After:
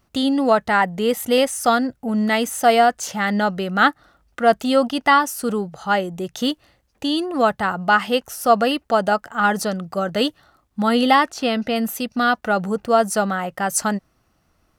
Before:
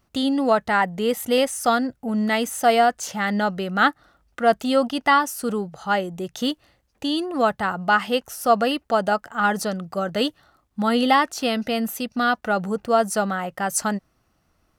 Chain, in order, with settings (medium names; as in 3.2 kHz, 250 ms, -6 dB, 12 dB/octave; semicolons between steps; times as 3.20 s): 11.30–11.76 s: treble shelf 7.5 kHz -11.5 dB; trim +2.5 dB